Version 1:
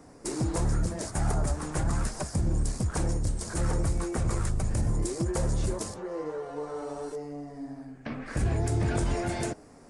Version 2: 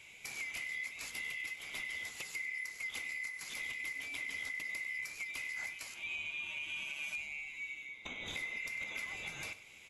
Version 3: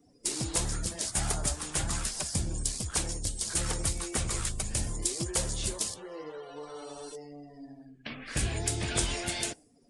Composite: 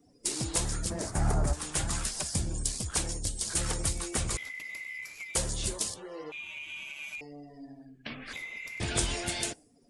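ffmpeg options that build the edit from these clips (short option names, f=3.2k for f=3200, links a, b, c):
-filter_complex "[1:a]asplit=3[a][b][c];[2:a]asplit=5[d][e][f][g][h];[d]atrim=end=0.902[i];[0:a]atrim=start=0.898:end=1.532[j];[e]atrim=start=1.528:end=4.372[k];[a]atrim=start=4.368:end=5.352[l];[f]atrim=start=5.348:end=6.322[m];[b]atrim=start=6.318:end=7.212[n];[g]atrim=start=7.208:end=8.332[o];[c]atrim=start=8.328:end=8.802[p];[h]atrim=start=8.798[q];[i][j]acrossfade=d=0.004:c1=hsin:c2=hsin[r];[r][k]acrossfade=d=0.004:c1=hsin:c2=hsin[s];[s][l]acrossfade=d=0.004:c1=hsin:c2=hsin[t];[t][m]acrossfade=d=0.004:c1=hsin:c2=hsin[u];[u][n]acrossfade=d=0.004:c1=hsin:c2=hsin[v];[v][o]acrossfade=d=0.004:c1=hsin:c2=hsin[w];[w][p]acrossfade=d=0.004:c1=hsin:c2=hsin[x];[x][q]acrossfade=d=0.004:c1=hsin:c2=hsin"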